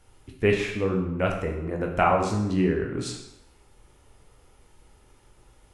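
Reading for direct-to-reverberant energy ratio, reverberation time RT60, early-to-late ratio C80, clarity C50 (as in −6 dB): 0.0 dB, 0.85 s, 7.5 dB, 5.5 dB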